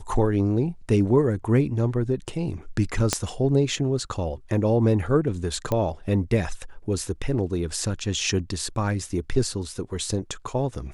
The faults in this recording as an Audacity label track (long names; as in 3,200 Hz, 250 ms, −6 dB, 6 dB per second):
3.130000	3.130000	click −6 dBFS
5.720000	5.720000	click −12 dBFS